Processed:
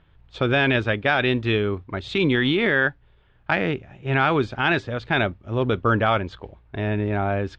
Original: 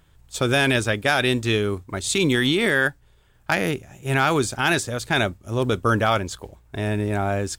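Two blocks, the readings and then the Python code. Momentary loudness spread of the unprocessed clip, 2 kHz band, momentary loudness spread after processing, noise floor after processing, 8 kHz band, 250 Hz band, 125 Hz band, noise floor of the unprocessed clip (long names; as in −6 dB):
9 LU, 0.0 dB, 8 LU, −57 dBFS, below −25 dB, 0.0 dB, 0.0 dB, −57 dBFS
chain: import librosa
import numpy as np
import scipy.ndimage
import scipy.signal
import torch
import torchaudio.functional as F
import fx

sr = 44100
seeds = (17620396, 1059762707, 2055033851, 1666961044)

y = scipy.signal.sosfilt(scipy.signal.butter(4, 3400.0, 'lowpass', fs=sr, output='sos'), x)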